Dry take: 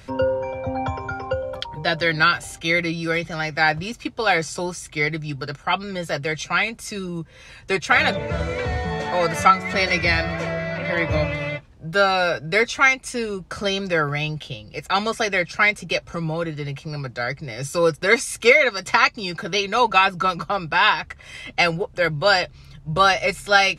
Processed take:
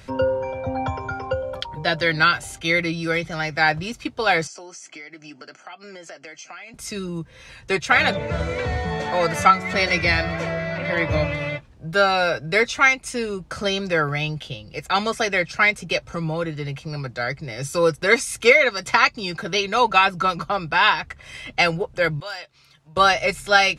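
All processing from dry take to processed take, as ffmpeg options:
ffmpeg -i in.wav -filter_complex "[0:a]asettb=1/sr,asplit=3[link_01][link_02][link_03];[link_01]atrim=end=4.474[link_04];[link_02]atrim=start=4.47:end=6.74,asetpts=PTS-STARTPTS,afade=type=in:duration=0.004:curve=qsin,afade=type=out:start_time=2.266:duration=0.004:curve=qsin,asuperstop=centerf=3700:order=8:qfactor=6.8,highpass=frequency=260:width=0.5412,highpass=frequency=260:width=1.3066,equalizer=frequency=470:width_type=q:width=4:gain=-7,equalizer=frequency=680:width_type=q:width=4:gain=4,equalizer=frequency=1000:width_type=q:width=4:gain=-5,equalizer=frequency=3900:width_type=q:width=4:gain=-3,equalizer=frequency=6200:width_type=q:width=4:gain=4,lowpass=frequency=7700:width=0.5412,lowpass=frequency=7700:width=1.3066,acompressor=threshold=-36dB:ratio=8:attack=3.2:release=140:knee=1:detection=peak[link_05];[link_03]atrim=start=6.736[link_06];[link_04][link_05]acrossfade=duration=0.004:curve1=hsin:curve2=qsin[link_07];[link_07][link_06]acrossfade=duration=0.004:curve1=qsin:curve2=hsin,asettb=1/sr,asplit=3[link_08][link_09][link_10];[link_08]atrim=end=22.204[link_11];[link_09]atrim=start=22.2:end=22.97,asetpts=PTS-STARTPTS,afade=type=in:duration=0.004:curve=qsin,afade=type=out:start_time=0.766:duration=0.004:curve=qsin,highpass=frequency=900:poles=1,acompressor=threshold=-53dB:ratio=1.5:attack=3.2:release=140:knee=1:detection=peak,asoftclip=type=hard:threshold=-25dB[link_12];[link_10]atrim=start=22.966[link_13];[link_11][link_12]acrossfade=duration=0.004:curve1=hsin:curve2=qsin[link_14];[link_14][link_13]acrossfade=duration=0.004:curve1=qsin:curve2=hsin" out.wav

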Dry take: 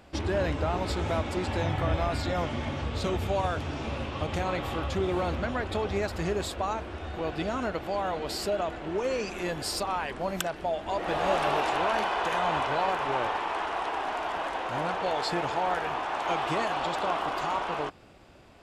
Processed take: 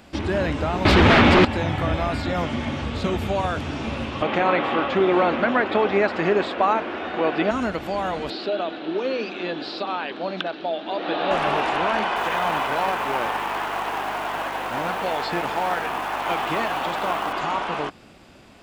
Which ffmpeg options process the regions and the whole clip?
ffmpeg -i in.wav -filter_complex "[0:a]asettb=1/sr,asplit=3[link_01][link_02][link_03];[link_01]atrim=end=0.854[link_04];[link_02]atrim=start=0.85:end=1.45,asetpts=PTS-STARTPTS,afade=type=in:duration=0.004:curve=qsin,afade=type=out:start_time=0.596:duration=0.004:curve=qsin,lowpass=6200,highshelf=frequency=3300:gain=6.5,aeval=exprs='0.178*sin(PI/2*4.47*val(0)/0.178)':channel_layout=same[link_05];[link_03]atrim=start=1.446[link_06];[link_04][link_05]acrossfade=duration=0.004:curve1=hsin:curve2=qsin[link_07];[link_07][link_06]acrossfade=duration=0.004:curve1=qsin:curve2=hsin,asettb=1/sr,asplit=3[link_08][link_09][link_10];[link_08]atrim=end=4.224[link_11];[link_09]atrim=start=4.22:end=7.51,asetpts=PTS-STARTPTS,afade=type=in:duration=0.004:curve=qsin,afade=type=out:start_time=3.286:duration=0.004:curve=qsin,highpass=300,lowpass=2800,acontrast=80[link_12];[link_10]atrim=start=7.506[link_13];[link_11][link_12]acrossfade=duration=0.004:curve1=hsin:curve2=qsin[link_14];[link_14][link_13]acrossfade=duration=0.004:curve1=qsin:curve2=hsin,asettb=1/sr,asplit=3[link_15][link_16][link_17];[link_15]atrim=end=8.304[link_18];[link_16]atrim=start=8.3:end=11.31,asetpts=PTS-STARTPTS,afade=type=in:duration=0.004:curve=qsin,afade=type=out:start_time=3.006:duration=0.004:curve=qsin,highpass=270,equalizer=frequency=300:width_type=q:width=4:gain=7,equalizer=frequency=1000:width_type=q:width=4:gain=-5,equalizer=frequency=2000:width_type=q:width=4:gain=-6,equalizer=frequency=3900:width_type=q:width=4:gain=9,lowpass=frequency=4200:width=0.5412,lowpass=frequency=4200:width=1.3066,bandreject=frequency=50:width_type=h:width=6,bandreject=frequency=100:width_type=h:width=6,bandreject=frequency=150:width_type=h:width=6,bandreject=frequency=200:width_type=h:width=6,bandreject=frequency=250:width_type=h:width=6,bandreject=frequency=300:width_type=h:width=6,bandreject=frequency=350:width_type=h:width=6[link_19];[link_17]atrim=start=11.306[link_20];[link_18][link_19]acrossfade=duration=0.004:curve1=hsin:curve2=qsin[link_21];[link_21][link_20]acrossfade=duration=0.004:curve1=qsin:curve2=hsin,asettb=1/sr,asplit=3[link_22][link_23][link_24];[link_22]atrim=end=12.164[link_25];[link_23]atrim=start=12.16:end=17.33,asetpts=PTS-STARTPTS,afade=type=in:duration=0.004:curve=qsin,afade=type=out:start_time=5.166:duration=0.004:curve=qsin,aeval=exprs='val(0)+0.00708*(sin(2*PI*50*n/s)+sin(2*PI*2*50*n/s)/2+sin(2*PI*3*50*n/s)/3+sin(2*PI*4*50*n/s)/4+sin(2*PI*5*50*n/s)/5)':channel_layout=same,acrusher=bits=3:mode=log:mix=0:aa=0.000001,lowshelf=frequency=150:gain=-10[link_26];[link_24]atrim=start=17.326[link_27];[link_25][link_26]acrossfade=duration=0.004:curve1=hsin:curve2=qsin[link_28];[link_28][link_27]acrossfade=duration=0.004:curve1=qsin:curve2=hsin,equalizer=frequency=220:width=1.3:gain=7.5,acrossover=split=3400[link_29][link_30];[link_30]acompressor=threshold=-52dB:ratio=4:attack=1:release=60[link_31];[link_29][link_31]amix=inputs=2:normalize=0,tiltshelf=frequency=1200:gain=-3.5,volume=5dB" out.wav

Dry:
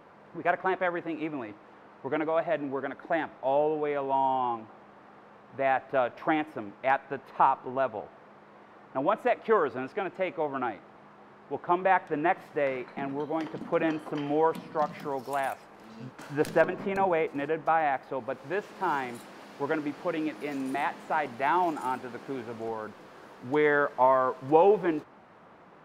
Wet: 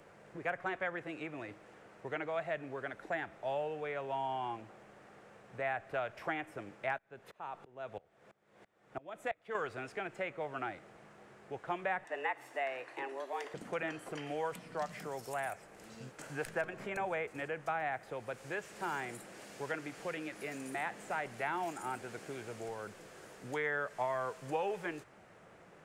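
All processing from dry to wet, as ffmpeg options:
ffmpeg -i in.wav -filter_complex "[0:a]asettb=1/sr,asplit=3[link_01][link_02][link_03];[link_01]atrim=end=6.984[link_04];[link_02]atrim=start=6.98:end=9.55,asetpts=PTS-STARTPTS,afade=type=in:duration=0.004:curve=qsin,afade=type=out:start_time=2.566:duration=0.004:curve=qsin,equalizer=frequency=3500:width=6.6:gain=4.5,aeval=exprs='val(0)*pow(10,-25*if(lt(mod(-3*n/s,1),2*abs(-3)/1000),1-mod(-3*n/s,1)/(2*abs(-3)/1000),(mod(-3*n/s,1)-2*abs(-3)/1000)/(1-2*abs(-3)/1000))/20)':channel_layout=same[link_05];[link_03]atrim=start=9.546[link_06];[link_04][link_05]acrossfade=duration=0.004:curve1=hsin:curve2=qsin[link_07];[link_07][link_06]acrossfade=duration=0.004:curve1=qsin:curve2=hsin,asettb=1/sr,asplit=3[link_08][link_09][link_10];[link_08]atrim=end=12.044[link_11];[link_09]atrim=start=12.04:end=13.54,asetpts=PTS-STARTPTS,afade=type=in:duration=0.004:curve=qsin,afade=type=out:start_time=1.496:duration=0.004:curve=qsin,afreqshift=130,aecho=1:1:1.1:0.36,atrim=end_sample=66150[link_12];[link_10]atrim=start=13.536[link_13];[link_11][link_12]acrossfade=duration=0.004:curve1=hsin:curve2=qsin[link_14];[link_14][link_13]acrossfade=duration=0.004:curve1=qsin:curve2=hsin,equalizer=frequency=250:width_type=o:width=1:gain=-9,equalizer=frequency=1000:width_type=o:width=1:gain=-11,equalizer=frequency=4000:width_type=o:width=1:gain=-5,equalizer=frequency=8000:width_type=o:width=1:gain=10,acrossover=split=200|740|2400[link_15][link_16][link_17][link_18];[link_15]acompressor=threshold=-54dB:ratio=4[link_19];[link_16]acompressor=threshold=-46dB:ratio=4[link_20];[link_17]acompressor=threshold=-36dB:ratio=4[link_21];[link_18]acompressor=threshold=-54dB:ratio=4[link_22];[link_19][link_20][link_21][link_22]amix=inputs=4:normalize=0,volume=1.5dB" out.wav

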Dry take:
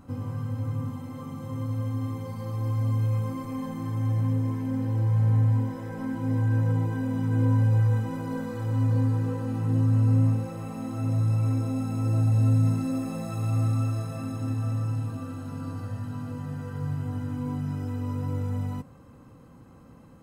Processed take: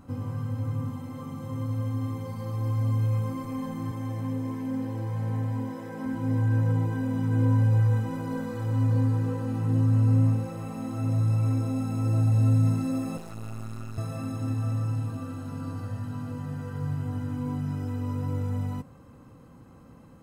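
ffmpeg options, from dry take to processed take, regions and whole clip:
ffmpeg -i in.wav -filter_complex "[0:a]asettb=1/sr,asplit=3[link_01][link_02][link_03];[link_01]atrim=end=3.914[link_04];[link_02]atrim=start=3.91:end=6.06,asetpts=PTS-STARTPTS,afade=type=in:duration=0.004:curve=qsin,afade=type=out:start_time=2.146:duration=0.004:curve=qsin,highpass=170,bandreject=frequency=1400:width=12[link_05];[link_03]atrim=start=6.056[link_06];[link_04][link_05]acrossfade=duration=0.004:curve1=hsin:curve2=qsin[link_07];[link_07][link_06]acrossfade=duration=0.004:curve1=qsin:curve2=hsin,asettb=1/sr,asplit=3[link_08][link_09][link_10];[link_08]atrim=end=13.174[link_11];[link_09]atrim=start=13.17:end=13.98,asetpts=PTS-STARTPTS,afade=type=in:duration=0.004:curve=qsin,afade=type=out:start_time=0.806:duration=0.004:curve=qsin,acrossover=split=92|810[link_12][link_13][link_14];[link_12]acompressor=threshold=-40dB:ratio=4[link_15];[link_13]acompressor=threshold=-37dB:ratio=4[link_16];[link_14]acompressor=threshold=-45dB:ratio=4[link_17];[link_15][link_16][link_17]amix=inputs=3:normalize=0,aeval=exprs='max(val(0),0)':channel_layout=same[link_18];[link_10]atrim=start=13.976[link_19];[link_11][link_18]acrossfade=duration=0.004:curve1=hsin:curve2=qsin[link_20];[link_20][link_19]acrossfade=duration=0.004:curve1=qsin:curve2=hsin" out.wav

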